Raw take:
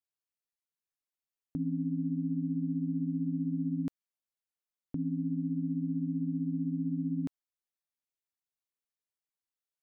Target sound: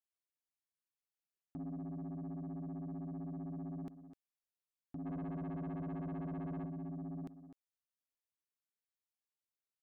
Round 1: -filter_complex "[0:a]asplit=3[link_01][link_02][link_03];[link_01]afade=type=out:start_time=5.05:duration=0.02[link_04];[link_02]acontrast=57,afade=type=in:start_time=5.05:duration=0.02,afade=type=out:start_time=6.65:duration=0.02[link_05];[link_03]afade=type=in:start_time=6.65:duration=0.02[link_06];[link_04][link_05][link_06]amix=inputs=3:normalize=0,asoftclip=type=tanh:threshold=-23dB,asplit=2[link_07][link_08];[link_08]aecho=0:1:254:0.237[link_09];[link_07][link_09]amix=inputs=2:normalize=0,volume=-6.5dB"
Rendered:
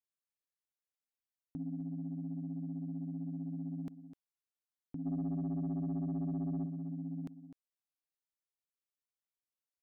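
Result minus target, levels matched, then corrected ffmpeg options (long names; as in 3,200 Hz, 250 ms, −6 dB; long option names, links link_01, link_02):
soft clipping: distortion −9 dB
-filter_complex "[0:a]asplit=3[link_01][link_02][link_03];[link_01]afade=type=out:start_time=5.05:duration=0.02[link_04];[link_02]acontrast=57,afade=type=in:start_time=5.05:duration=0.02,afade=type=out:start_time=6.65:duration=0.02[link_05];[link_03]afade=type=in:start_time=6.65:duration=0.02[link_06];[link_04][link_05][link_06]amix=inputs=3:normalize=0,asoftclip=type=tanh:threshold=-32.5dB,asplit=2[link_07][link_08];[link_08]aecho=0:1:254:0.237[link_09];[link_07][link_09]amix=inputs=2:normalize=0,volume=-6.5dB"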